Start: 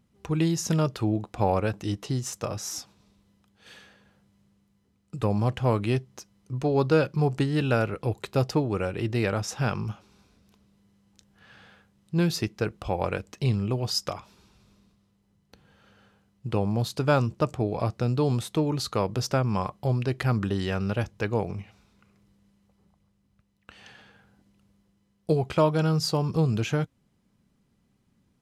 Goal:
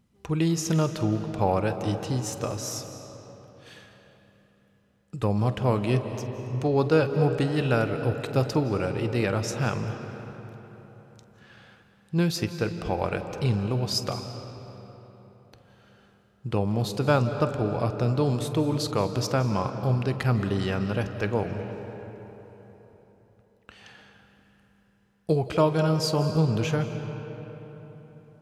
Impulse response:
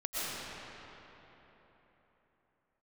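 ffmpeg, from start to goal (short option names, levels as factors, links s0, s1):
-filter_complex "[0:a]asplit=2[s0][s1];[s1]equalizer=f=460:t=o:w=0.41:g=3[s2];[1:a]atrim=start_sample=2205,adelay=48[s3];[s2][s3]afir=irnorm=-1:irlink=0,volume=0.178[s4];[s0][s4]amix=inputs=2:normalize=0"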